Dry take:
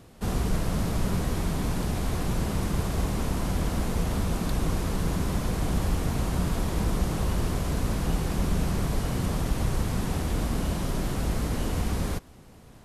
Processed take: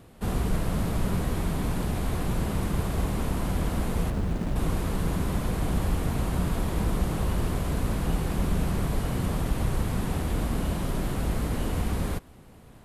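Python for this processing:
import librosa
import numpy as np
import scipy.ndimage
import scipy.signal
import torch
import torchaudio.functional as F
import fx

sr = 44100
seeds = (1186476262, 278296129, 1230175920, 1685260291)

y = fx.peak_eq(x, sr, hz=5700.0, db=-6.0, octaves=0.82)
y = fx.running_max(y, sr, window=33, at=(4.1, 4.56))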